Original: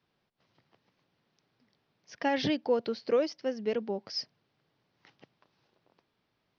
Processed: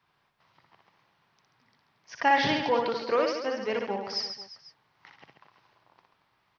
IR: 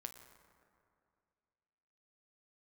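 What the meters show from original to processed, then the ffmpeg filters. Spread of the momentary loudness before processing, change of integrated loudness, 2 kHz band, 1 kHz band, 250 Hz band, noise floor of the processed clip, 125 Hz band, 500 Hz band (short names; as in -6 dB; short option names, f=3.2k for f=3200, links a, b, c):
7 LU, +3.5 dB, +10.0 dB, +11.0 dB, -0.5 dB, -72 dBFS, +2.5 dB, +1.5 dB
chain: -af "equalizer=f=250:t=o:w=1:g=-5,equalizer=f=500:t=o:w=1:g=-4,equalizer=f=1k:t=o:w=1:g=9,equalizer=f=2k:t=o:w=1:g=4,aecho=1:1:60|135|228.8|345.9|492.4:0.631|0.398|0.251|0.158|0.1,volume=2dB"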